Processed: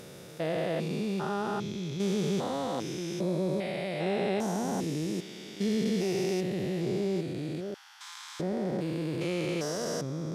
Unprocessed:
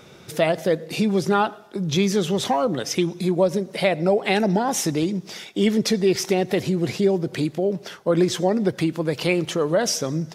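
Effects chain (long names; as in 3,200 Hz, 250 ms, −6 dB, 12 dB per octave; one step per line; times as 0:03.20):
spectrum averaged block by block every 400 ms
0:07.74–0:08.40: Butterworth high-pass 830 Hz 96 dB per octave
level −5.5 dB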